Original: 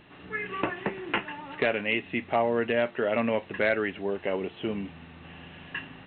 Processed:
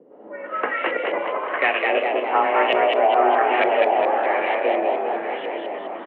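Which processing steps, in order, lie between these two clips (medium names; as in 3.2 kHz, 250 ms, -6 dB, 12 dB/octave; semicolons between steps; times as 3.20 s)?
backward echo that repeats 200 ms, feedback 80%, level -6 dB; LFO low-pass saw up 1.1 Hz 350–2900 Hz; frequency shift +140 Hz; frequency-shifting echo 207 ms, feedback 51%, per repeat +57 Hz, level -3 dB; on a send at -14 dB: reverberation RT60 0.40 s, pre-delay 27 ms; on the sum: trim +2 dB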